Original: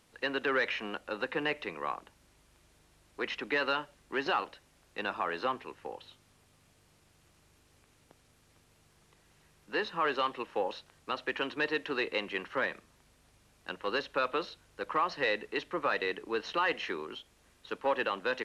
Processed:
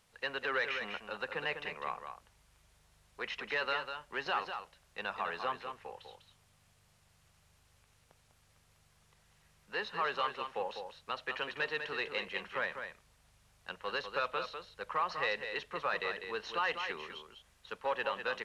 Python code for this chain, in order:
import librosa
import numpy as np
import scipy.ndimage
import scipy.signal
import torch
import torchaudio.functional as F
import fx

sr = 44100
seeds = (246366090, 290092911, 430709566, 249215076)

y = fx.peak_eq(x, sr, hz=300.0, db=-14.5, octaves=0.62)
y = y + 10.0 ** (-7.5 / 20.0) * np.pad(y, (int(199 * sr / 1000.0), 0))[:len(y)]
y = y * 10.0 ** (-3.0 / 20.0)